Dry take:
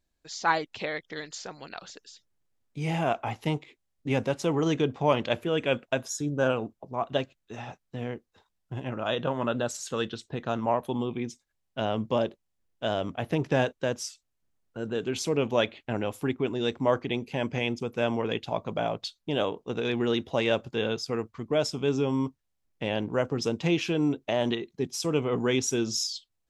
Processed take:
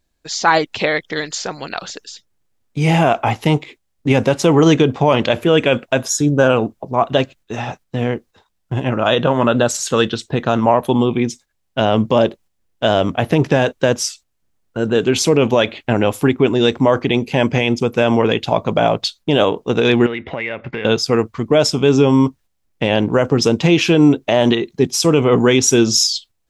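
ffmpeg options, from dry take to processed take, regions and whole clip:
-filter_complex "[0:a]asettb=1/sr,asplit=3[a][b][c];[a]atrim=end=20.064[d];[b]atrim=start=20.06:end=20.85,asetpts=PTS-STARTPTS,afade=t=in:d=0.004:c=qsin,afade=t=out:st=0.786:d=0.004:c=qsin,lowpass=f=2.1k:t=q:w=8.3,acompressor=threshold=-37dB:ratio=5:attack=3.2:release=140:knee=1:detection=peak[e];[c]atrim=start=20.846[f];[d][e]acrossfade=d=0.004:c1=hsin:c2=qsin[g];[g][f]acrossfade=d=0.004:c1=qsin:c2=hsin,agate=range=-6dB:threshold=-54dB:ratio=16:detection=peak,alimiter=level_in=16dB:limit=-1dB:release=50:level=0:latency=1,volume=-1dB"

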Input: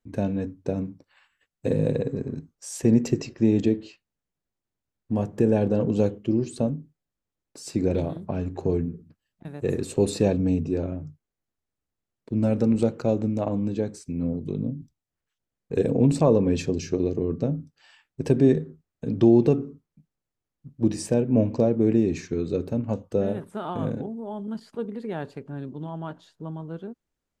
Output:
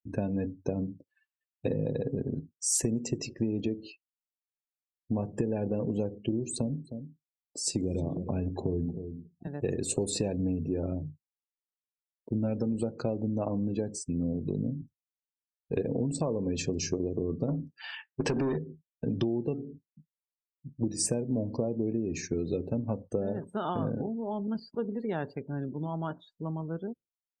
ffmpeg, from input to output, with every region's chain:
-filter_complex "[0:a]asettb=1/sr,asplit=3[a][b][c];[a]atrim=end=6.544[d];[b]atrim=start=6.54:end=9.47,asetpts=PTS-STARTPTS,afade=t=in:d=0.004:c=qsin,afade=t=out:st=2.926:d=0.004:c=qsin,acrossover=split=410|3000[e][f][g];[f]acompressor=threshold=-36dB:ratio=5:attack=3.2:release=140:knee=2.83:detection=peak[h];[e][h][g]amix=inputs=3:normalize=0,aecho=1:1:311:0.2,atrim=end_sample=129213[i];[c]atrim=start=9.466[j];[d][i]acrossfade=d=0.004:c1=hsin:c2=qsin[k];[k][j]acrossfade=d=0.004:c1=qsin:c2=hsin,asettb=1/sr,asplit=3[l][m][n];[l]atrim=end=17.484[o];[m]atrim=start=17.48:end=18.57,asetpts=PTS-STARTPTS,afade=t=in:d=0.004:c=qsin,afade=t=out:st=1.086:d=0.004:c=qsin,equalizer=f=510:w=1.1:g=-3.5,acompressor=threshold=-19dB:ratio=4:attack=3.2:release=140:knee=1:detection=peak,asplit=2[p][q];[q]highpass=f=720:p=1,volume=23dB,asoftclip=type=tanh:threshold=-12.5dB[r];[p][r]amix=inputs=2:normalize=0,lowpass=f=1.7k:p=1,volume=-6dB[s];[n]atrim=start=18.566[t];[o][s]acrossfade=d=0.004:c1=hsin:c2=qsin[u];[u][t]acrossfade=d=0.004:c1=qsin:c2=hsin,acompressor=threshold=-26dB:ratio=12,afftdn=nr=34:nf=-48,highshelf=f=4k:g=12"

